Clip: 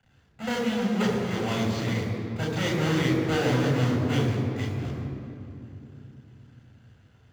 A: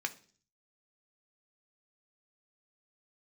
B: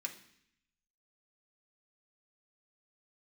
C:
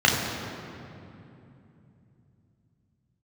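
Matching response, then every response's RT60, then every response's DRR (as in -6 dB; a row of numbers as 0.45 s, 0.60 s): C; 0.45 s, 0.65 s, 2.8 s; 5.5 dB, 0.5 dB, -3.0 dB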